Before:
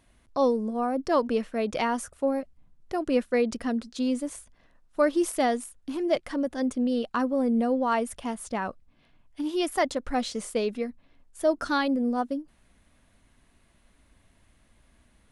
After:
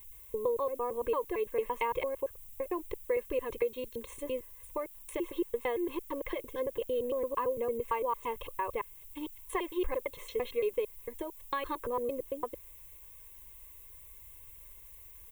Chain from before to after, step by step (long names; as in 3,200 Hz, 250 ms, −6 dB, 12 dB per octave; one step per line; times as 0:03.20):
slices reordered back to front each 113 ms, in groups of 3
parametric band 4,200 Hz +5.5 dB 0.35 octaves
comb filter 1.9 ms, depth 74%
downward compressor, threshold −26 dBFS, peak gain reduction 11.5 dB
treble cut that deepens with the level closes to 2,600 Hz, closed at −28.5 dBFS
background noise violet −52 dBFS
phaser with its sweep stopped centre 980 Hz, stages 8